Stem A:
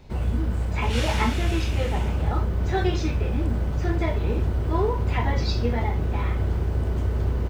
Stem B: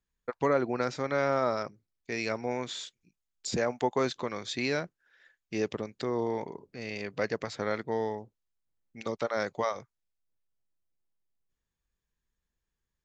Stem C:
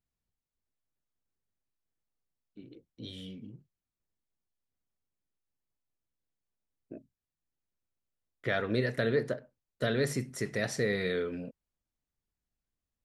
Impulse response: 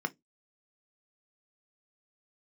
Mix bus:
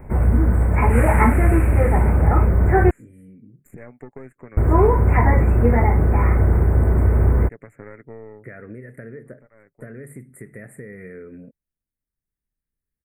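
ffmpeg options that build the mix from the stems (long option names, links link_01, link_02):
-filter_complex "[0:a]acontrast=72,volume=2dB,asplit=3[link_01][link_02][link_03];[link_01]atrim=end=2.91,asetpts=PTS-STARTPTS,afade=type=out:start_time=2.906:duration=0.004:curve=hsin[link_04];[link_02]atrim=start=2.91:end=4.57,asetpts=PTS-STARTPTS,volume=0[link_05];[link_03]atrim=start=4.57,asetpts=PTS-STARTPTS,afade=type=in:duration=0.004:curve=hsin[link_06];[link_04][link_05][link_06]concat=n=3:v=0:a=1[link_07];[1:a]aecho=1:1:7.2:0.36,aeval=exprs='(tanh(11.2*val(0)+0.7)-tanh(0.7))/11.2':channel_layout=same,adelay=200,volume=2dB[link_08];[2:a]volume=0.5dB,asplit=2[link_09][link_10];[link_10]apad=whole_len=584325[link_11];[link_08][link_11]sidechaincompress=threshold=-49dB:ratio=4:attack=42:release=1150[link_12];[link_12][link_09]amix=inputs=2:normalize=0,equalizer=frequency=910:width_type=o:width=1.3:gain=-13,acompressor=threshold=-33dB:ratio=10,volume=0dB[link_13];[link_07][link_13]amix=inputs=2:normalize=0,asuperstop=centerf=4400:order=12:qfactor=0.72"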